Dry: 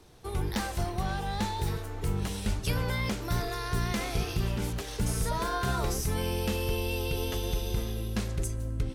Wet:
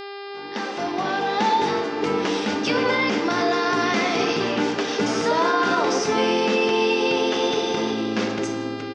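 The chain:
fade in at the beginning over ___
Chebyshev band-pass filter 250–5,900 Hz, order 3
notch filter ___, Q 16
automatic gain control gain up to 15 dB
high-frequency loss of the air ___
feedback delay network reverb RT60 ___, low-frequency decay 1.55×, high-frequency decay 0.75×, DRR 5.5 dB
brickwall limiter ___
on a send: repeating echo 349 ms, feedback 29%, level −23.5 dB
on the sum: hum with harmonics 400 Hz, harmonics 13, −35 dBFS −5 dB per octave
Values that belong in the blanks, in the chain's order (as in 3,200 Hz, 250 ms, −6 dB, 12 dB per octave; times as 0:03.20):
1.54 s, 4,100 Hz, 91 metres, 1.1 s, −11.5 dBFS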